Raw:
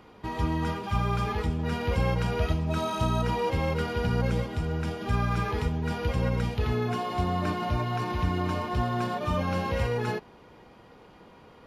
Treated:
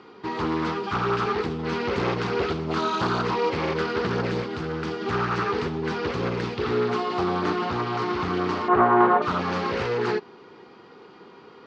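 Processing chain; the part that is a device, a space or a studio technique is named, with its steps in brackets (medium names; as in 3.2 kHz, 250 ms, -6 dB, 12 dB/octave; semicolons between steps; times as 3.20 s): full-range speaker at full volume (loudspeaker Doppler distortion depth 0.81 ms; cabinet simulation 180–6100 Hz, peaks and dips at 390 Hz +9 dB, 600 Hz -8 dB, 1.3 kHz +5 dB, 4.5 kHz +5 dB); 8.68–9.22 s: FFT filter 160 Hz 0 dB, 900 Hz +12 dB, 2.2 kHz +2 dB, 7.5 kHz -28 dB; trim +3.5 dB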